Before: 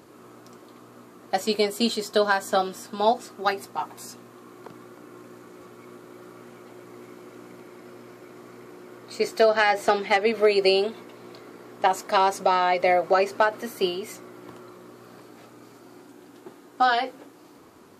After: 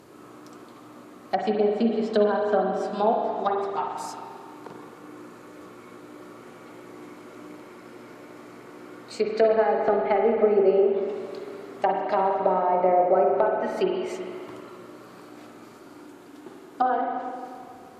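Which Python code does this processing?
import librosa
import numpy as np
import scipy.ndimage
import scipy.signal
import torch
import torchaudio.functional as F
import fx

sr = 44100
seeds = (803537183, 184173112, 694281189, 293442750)

y = fx.env_lowpass_down(x, sr, base_hz=720.0, full_db=-19.0)
y = fx.rev_spring(y, sr, rt60_s=2.2, pass_ms=(43, 53), chirp_ms=25, drr_db=1.0)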